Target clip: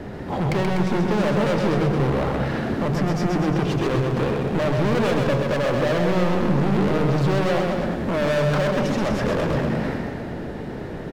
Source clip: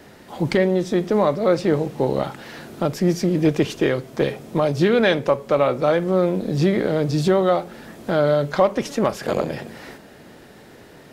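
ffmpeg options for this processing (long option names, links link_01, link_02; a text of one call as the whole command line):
ffmpeg -i in.wav -filter_complex "[0:a]lowpass=frequency=1200:poles=1,lowshelf=frequency=160:gain=10.5,bandreject=frequency=50:width_type=h:width=6,bandreject=frequency=100:width_type=h:width=6,bandreject=frequency=150:width_type=h:width=6,asplit=2[link_01][link_02];[link_02]acompressor=threshold=-25dB:ratio=6,volume=-2.5dB[link_03];[link_01][link_03]amix=inputs=2:normalize=0,alimiter=limit=-9.5dB:level=0:latency=1:release=47,acontrast=88,asoftclip=type=hard:threshold=-19dB,aecho=1:1:130|247|352.3|447.1|532.4:0.631|0.398|0.251|0.158|0.1,volume=-2dB" out.wav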